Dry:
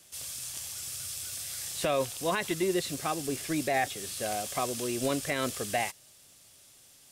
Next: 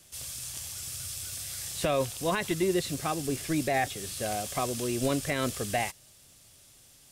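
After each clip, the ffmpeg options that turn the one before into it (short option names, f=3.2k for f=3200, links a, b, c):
-af "lowshelf=f=150:g=10"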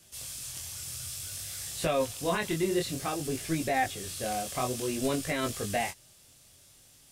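-af "flanger=delay=18:depth=6.8:speed=0.56,volume=2dB"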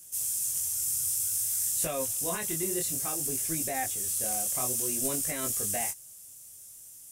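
-af "aexciter=amount=4.8:drive=7.8:freq=5.9k,volume=-6dB"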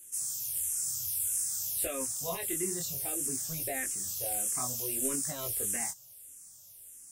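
-filter_complex "[0:a]asplit=2[a][b];[b]afreqshift=-1.6[c];[a][c]amix=inputs=2:normalize=1"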